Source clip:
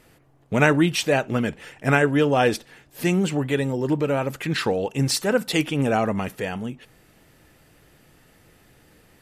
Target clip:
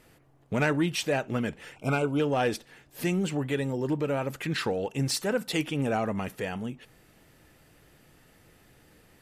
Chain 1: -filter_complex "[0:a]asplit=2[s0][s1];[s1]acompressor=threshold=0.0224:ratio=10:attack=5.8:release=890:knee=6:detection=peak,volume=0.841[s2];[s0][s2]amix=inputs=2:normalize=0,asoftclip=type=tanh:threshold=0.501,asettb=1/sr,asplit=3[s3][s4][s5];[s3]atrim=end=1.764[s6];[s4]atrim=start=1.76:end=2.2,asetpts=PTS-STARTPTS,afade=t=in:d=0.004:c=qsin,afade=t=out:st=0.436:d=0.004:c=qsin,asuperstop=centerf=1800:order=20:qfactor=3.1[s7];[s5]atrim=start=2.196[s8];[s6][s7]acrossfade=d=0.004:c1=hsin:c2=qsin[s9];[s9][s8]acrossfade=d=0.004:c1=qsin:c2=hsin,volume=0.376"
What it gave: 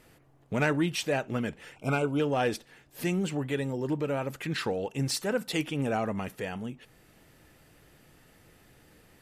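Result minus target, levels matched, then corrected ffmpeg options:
compression: peak gain reduction +9.5 dB
-filter_complex "[0:a]asplit=2[s0][s1];[s1]acompressor=threshold=0.075:ratio=10:attack=5.8:release=890:knee=6:detection=peak,volume=0.841[s2];[s0][s2]amix=inputs=2:normalize=0,asoftclip=type=tanh:threshold=0.501,asettb=1/sr,asplit=3[s3][s4][s5];[s3]atrim=end=1.764[s6];[s4]atrim=start=1.76:end=2.2,asetpts=PTS-STARTPTS,afade=t=in:d=0.004:c=qsin,afade=t=out:st=0.436:d=0.004:c=qsin,asuperstop=centerf=1800:order=20:qfactor=3.1[s7];[s5]atrim=start=2.196[s8];[s6][s7]acrossfade=d=0.004:c1=hsin:c2=qsin[s9];[s9][s8]acrossfade=d=0.004:c1=qsin:c2=hsin,volume=0.376"

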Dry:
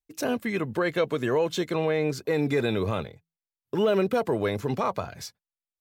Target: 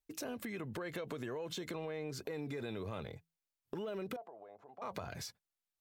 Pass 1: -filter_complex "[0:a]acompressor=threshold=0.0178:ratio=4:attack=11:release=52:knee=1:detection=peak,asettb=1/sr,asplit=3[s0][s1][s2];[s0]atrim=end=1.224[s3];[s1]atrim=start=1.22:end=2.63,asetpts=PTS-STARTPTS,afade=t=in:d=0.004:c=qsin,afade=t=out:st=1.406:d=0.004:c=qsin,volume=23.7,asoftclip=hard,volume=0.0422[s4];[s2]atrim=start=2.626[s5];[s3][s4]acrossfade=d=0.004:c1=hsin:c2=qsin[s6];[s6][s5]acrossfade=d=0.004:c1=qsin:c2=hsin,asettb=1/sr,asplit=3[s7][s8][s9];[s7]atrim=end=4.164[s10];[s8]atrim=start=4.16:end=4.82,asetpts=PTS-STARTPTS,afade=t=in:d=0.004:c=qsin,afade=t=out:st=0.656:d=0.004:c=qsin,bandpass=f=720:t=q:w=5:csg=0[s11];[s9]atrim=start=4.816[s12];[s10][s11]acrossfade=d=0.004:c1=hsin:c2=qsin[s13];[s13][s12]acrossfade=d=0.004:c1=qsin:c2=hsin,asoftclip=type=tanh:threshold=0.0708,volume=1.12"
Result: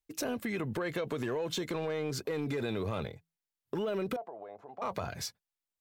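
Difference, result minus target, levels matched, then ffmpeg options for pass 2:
compression: peak gain reduction -8.5 dB
-filter_complex "[0:a]acompressor=threshold=0.00501:ratio=4:attack=11:release=52:knee=1:detection=peak,asettb=1/sr,asplit=3[s0][s1][s2];[s0]atrim=end=1.224[s3];[s1]atrim=start=1.22:end=2.63,asetpts=PTS-STARTPTS,afade=t=in:d=0.004:c=qsin,afade=t=out:st=1.406:d=0.004:c=qsin,volume=23.7,asoftclip=hard,volume=0.0422[s4];[s2]atrim=start=2.626[s5];[s3][s4]acrossfade=d=0.004:c1=hsin:c2=qsin[s6];[s6][s5]acrossfade=d=0.004:c1=qsin:c2=hsin,asettb=1/sr,asplit=3[s7][s8][s9];[s7]atrim=end=4.164[s10];[s8]atrim=start=4.16:end=4.82,asetpts=PTS-STARTPTS,afade=t=in:d=0.004:c=qsin,afade=t=out:st=0.656:d=0.004:c=qsin,bandpass=f=720:t=q:w=5:csg=0[s11];[s9]atrim=start=4.816[s12];[s10][s11]acrossfade=d=0.004:c1=hsin:c2=qsin[s13];[s13][s12]acrossfade=d=0.004:c1=qsin:c2=hsin,asoftclip=type=tanh:threshold=0.0708,volume=1.12"

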